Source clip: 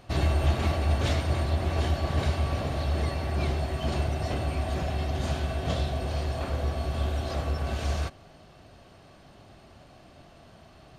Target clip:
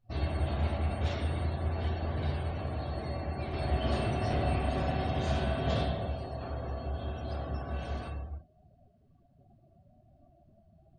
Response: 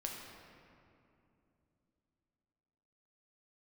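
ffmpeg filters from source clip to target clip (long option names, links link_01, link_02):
-filter_complex "[0:a]asettb=1/sr,asplit=3[link_01][link_02][link_03];[link_01]atrim=end=3.534[link_04];[link_02]atrim=start=3.53:end=5.83,asetpts=PTS-STARTPTS,afade=type=in:duration=0.004:curve=qsin,afade=type=out:start_time=2.296:duration=0.004:curve=qsin,acontrast=56[link_05];[link_03]atrim=start=5.826[link_06];[link_04][link_05]acrossfade=duration=0.004:curve1=hsin:curve2=qsin[link_07];[link_07][link_06]acrossfade=duration=0.004:curve1=qsin:curve2=hsin[link_08];[1:a]atrim=start_sample=2205,afade=type=out:start_time=0.3:duration=0.01,atrim=end_sample=13671,asetrate=32193,aresample=44100[link_09];[link_08][link_09]afir=irnorm=-1:irlink=0,afftdn=noise_reduction=25:noise_floor=-42,volume=-7.5dB"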